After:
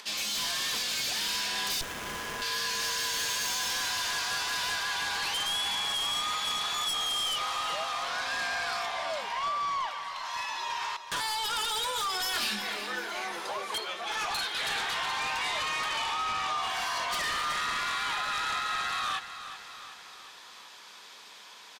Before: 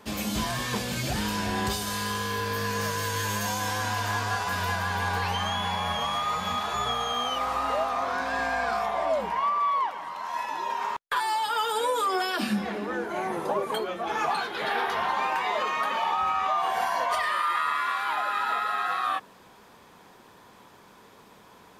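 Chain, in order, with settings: upward compressor, threshold -43 dBFS; band-pass 4400 Hz, Q 1.1; sine folder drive 12 dB, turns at -21.5 dBFS; 12.32–13.1 doubler 24 ms -4 dB; feedback echo 0.373 s, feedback 56%, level -12 dB; 1.81–2.42 running maximum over 9 samples; gain -6.5 dB

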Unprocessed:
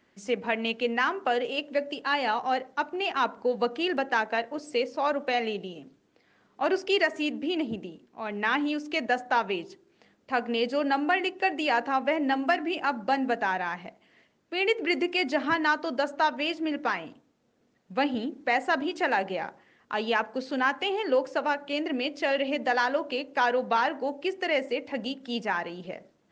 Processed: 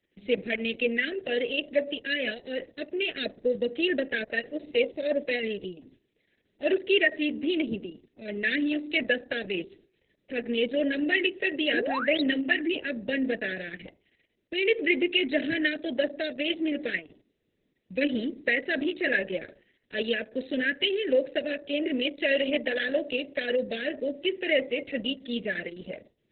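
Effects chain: Chebyshev band-stop 620–1700 Hz, order 4; gate -57 dBFS, range -8 dB; LPF 6700 Hz 24 dB/oct; painted sound rise, 11.73–12.25, 260–5300 Hz -32 dBFS; gain +2 dB; Opus 6 kbps 48000 Hz

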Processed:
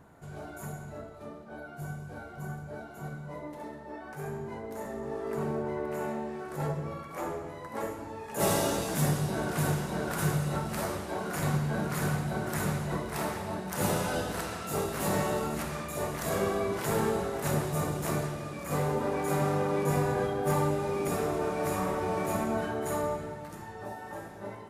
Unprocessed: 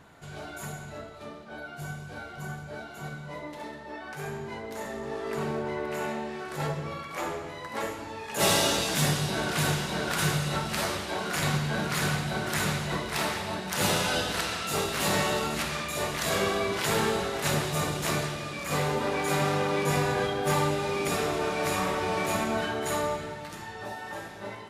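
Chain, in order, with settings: bell 3500 Hz -13 dB 2.2 oct

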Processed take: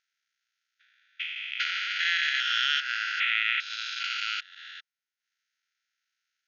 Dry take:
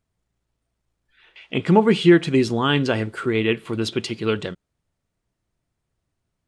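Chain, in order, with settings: stepped spectrum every 0.4 s; transient shaper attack +6 dB, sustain -10 dB; brick-wall FIR band-pass 1300–6800 Hz; gain +7.5 dB

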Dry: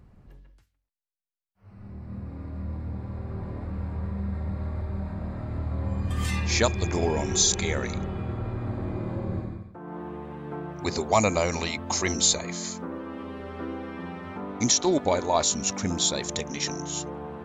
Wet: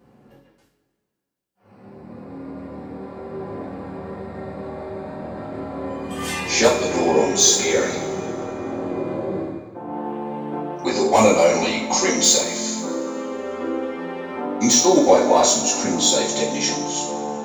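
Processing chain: HPF 330 Hz 12 dB/oct; high shelf 6900 Hz +2.5 dB; in parallel at -4 dB: wavefolder -15 dBFS; on the sum: low shelf 430 Hz +11.5 dB; two-slope reverb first 0.41 s, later 2.2 s, from -18 dB, DRR -9 dB; gain -7.5 dB

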